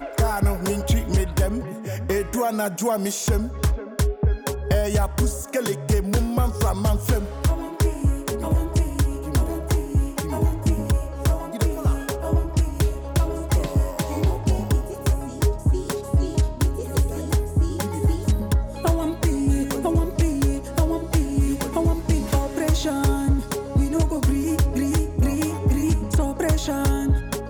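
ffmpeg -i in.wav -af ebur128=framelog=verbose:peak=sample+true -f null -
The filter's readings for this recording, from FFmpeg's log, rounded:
Integrated loudness:
  I:         -23.4 LUFS
  Threshold: -33.4 LUFS
Loudness range:
  LRA:         1.6 LU
  Threshold: -43.4 LUFS
  LRA low:   -24.1 LUFS
  LRA high:  -22.5 LUFS
Sample peak:
  Peak:      -11.3 dBFS
True peak:
  Peak:      -11.1 dBFS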